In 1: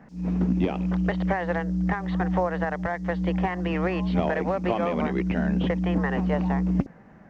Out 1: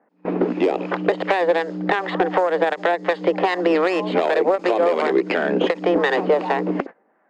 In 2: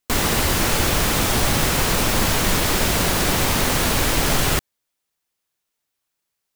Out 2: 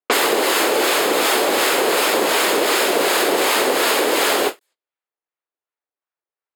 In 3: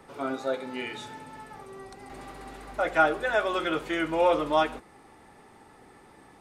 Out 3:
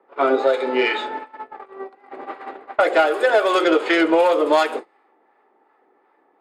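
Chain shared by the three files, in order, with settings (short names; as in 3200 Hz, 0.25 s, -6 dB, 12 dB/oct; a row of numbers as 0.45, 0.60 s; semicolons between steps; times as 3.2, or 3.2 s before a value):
tracing distortion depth 0.095 ms; HPF 330 Hz 24 dB/oct; notch 5800 Hz, Q 5.1; gate -43 dBFS, range -21 dB; low-pass opened by the level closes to 1700 Hz, open at -22 dBFS; dynamic EQ 430 Hz, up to +6 dB, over -42 dBFS, Q 1.5; compressor 6:1, threshold -29 dBFS; harmonic tremolo 2.7 Hz, depth 50%, crossover 790 Hz; soft clip -21.5 dBFS; ending taper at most 400 dB/s; normalise peaks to -6 dBFS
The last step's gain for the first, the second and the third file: +17.0, +17.0, +18.5 dB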